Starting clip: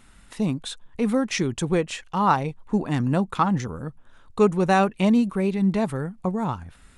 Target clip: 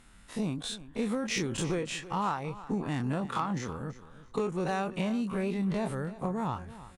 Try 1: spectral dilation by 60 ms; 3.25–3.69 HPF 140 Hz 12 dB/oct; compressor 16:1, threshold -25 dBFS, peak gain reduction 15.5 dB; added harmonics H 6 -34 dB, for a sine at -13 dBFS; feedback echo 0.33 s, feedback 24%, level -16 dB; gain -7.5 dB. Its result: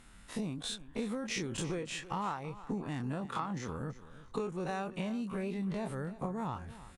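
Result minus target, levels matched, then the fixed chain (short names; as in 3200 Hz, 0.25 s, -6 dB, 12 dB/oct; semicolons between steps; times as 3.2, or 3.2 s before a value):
compressor: peak gain reduction +5.5 dB
spectral dilation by 60 ms; 3.25–3.69 HPF 140 Hz 12 dB/oct; compressor 16:1, threshold -19 dBFS, peak gain reduction 9.5 dB; added harmonics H 6 -34 dB, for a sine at -13 dBFS; feedback echo 0.33 s, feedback 24%, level -16 dB; gain -7.5 dB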